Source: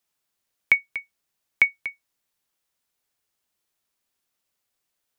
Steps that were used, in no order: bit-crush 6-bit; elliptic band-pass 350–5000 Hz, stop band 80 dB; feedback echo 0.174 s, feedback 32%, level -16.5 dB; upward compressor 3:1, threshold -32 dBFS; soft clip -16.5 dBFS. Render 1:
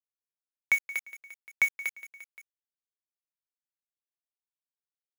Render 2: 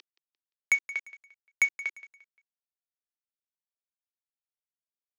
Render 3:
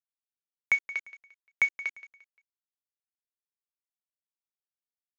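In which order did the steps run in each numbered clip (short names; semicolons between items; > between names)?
soft clip > elliptic band-pass > bit-crush > feedback echo > upward compressor; upward compressor > bit-crush > elliptic band-pass > soft clip > feedback echo; soft clip > bit-crush > elliptic band-pass > upward compressor > feedback echo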